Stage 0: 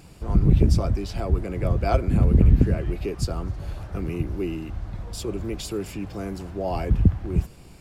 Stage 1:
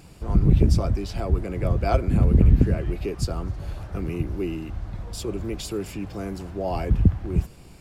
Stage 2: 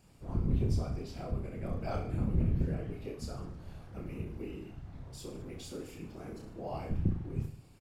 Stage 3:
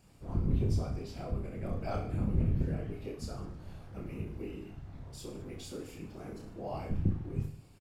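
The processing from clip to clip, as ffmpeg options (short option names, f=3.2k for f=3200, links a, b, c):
-af anull
-af "afftfilt=real='hypot(re,im)*cos(2*PI*random(0))':imag='hypot(re,im)*sin(2*PI*random(1))':win_size=512:overlap=0.75,aecho=1:1:30|64.5|104.2|149.8|202.3:0.631|0.398|0.251|0.158|0.1,volume=-9dB"
-filter_complex "[0:a]asplit=2[a][b];[b]adelay=20,volume=-12dB[c];[a][c]amix=inputs=2:normalize=0"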